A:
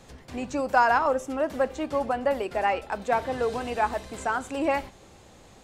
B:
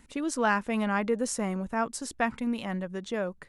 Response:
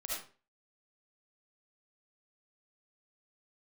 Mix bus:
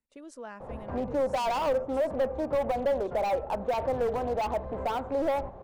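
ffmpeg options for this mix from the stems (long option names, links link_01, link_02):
-filter_complex "[0:a]lowpass=frequency=1000:width_type=q:width=2,aeval=exprs='0.0596*(cos(1*acos(clip(val(0)/0.0596,-1,1)))-cos(1*PI/2))+0.00531*(cos(5*acos(clip(val(0)/0.0596,-1,1)))-cos(5*PI/2))':channel_layout=same,adelay=600,volume=3dB[link_01];[1:a]agate=range=-17dB:threshold=-48dB:ratio=16:detection=peak,volume=-17dB[link_02];[link_01][link_02]amix=inputs=2:normalize=0,equalizer=frequency=550:width_type=o:width=0.72:gain=10,acrossover=split=170[link_03][link_04];[link_04]acompressor=threshold=-44dB:ratio=1.5[link_05];[link_03][link_05]amix=inputs=2:normalize=0"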